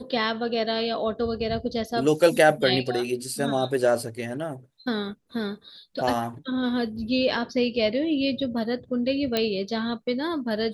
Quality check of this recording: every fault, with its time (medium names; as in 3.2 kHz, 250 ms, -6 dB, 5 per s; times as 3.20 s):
9.37 s: pop -9 dBFS